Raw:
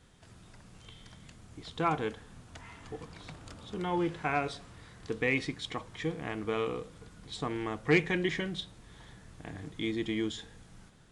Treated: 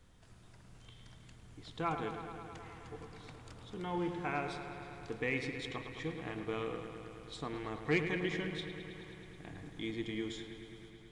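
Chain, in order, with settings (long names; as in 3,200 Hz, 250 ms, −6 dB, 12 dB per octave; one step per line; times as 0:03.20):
background noise brown −57 dBFS
on a send: delay with a low-pass on its return 107 ms, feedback 81%, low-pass 3,500 Hz, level −9 dB
on the sum: level −6.5 dB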